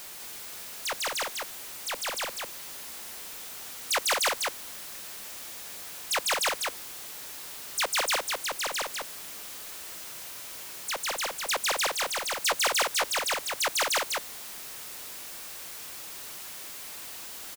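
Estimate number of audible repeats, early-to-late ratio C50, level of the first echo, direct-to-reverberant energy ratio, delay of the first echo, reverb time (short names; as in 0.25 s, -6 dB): 1, none, -3.5 dB, none, 0.2 s, none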